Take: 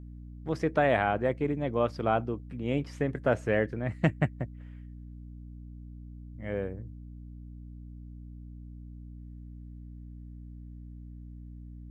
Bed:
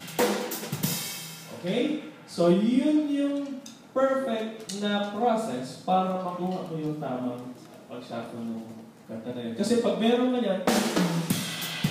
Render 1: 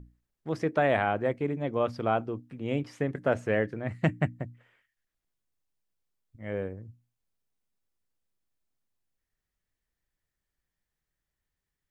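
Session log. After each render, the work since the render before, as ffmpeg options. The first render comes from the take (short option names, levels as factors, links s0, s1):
-af "bandreject=f=60:t=h:w=6,bandreject=f=120:t=h:w=6,bandreject=f=180:t=h:w=6,bandreject=f=240:t=h:w=6,bandreject=f=300:t=h:w=6"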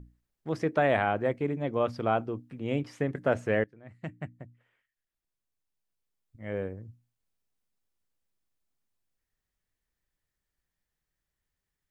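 -filter_complex "[0:a]asplit=2[s0][s1];[s0]atrim=end=3.64,asetpts=PTS-STARTPTS,afade=t=out:st=3.636:d=0.004:c=hsin:silence=0.0944061[s2];[s1]atrim=start=3.64,asetpts=PTS-STARTPTS,afade=t=in:d=3.06:silence=0.0944061[s3];[s2][s3]concat=n=2:v=0:a=1"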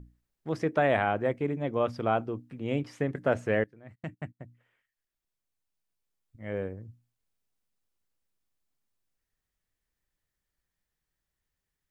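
-filter_complex "[0:a]asettb=1/sr,asplit=3[s0][s1][s2];[s0]atrim=end=0.654[s3];[s1]atrim=start=0.65:end=2.13,asetpts=PTS-STARTPTS,afade=t=in:d=0.004:c=qsin,afade=t=out:st=1.476:d=0.004:c=qsin,bandreject=f=4300:w=12[s4];[s2]atrim=start=2.126[s5];[s3][s4]acrossfade=d=0.004:c1=hsin:c2=qsin[s6];[s6][s5]acrossfade=d=0.004:c1=qsin:c2=hsin,asplit=3[s7][s8][s9];[s7]afade=t=out:st=3.94:d=0.02[s10];[s8]agate=range=0.0447:threshold=0.00316:ratio=16:release=100:detection=peak,afade=t=in:st=3.94:d=0.02,afade=t=out:st=4.39:d=0.02[s11];[s9]afade=t=in:st=4.39:d=0.02[s12];[s10][s11][s12]amix=inputs=3:normalize=0"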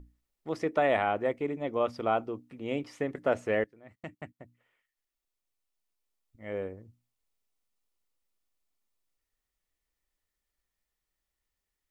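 -af "equalizer=f=130:t=o:w=1.3:g=-10,bandreject=f=1600:w=8.9"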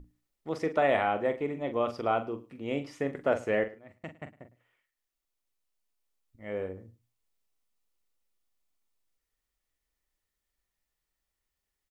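-filter_complex "[0:a]asplit=2[s0][s1];[s1]adelay=43,volume=0.335[s2];[s0][s2]amix=inputs=2:normalize=0,aecho=1:1:107:0.0944"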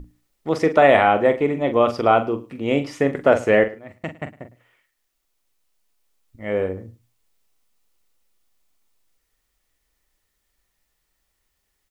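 -af "volume=3.98,alimiter=limit=0.794:level=0:latency=1"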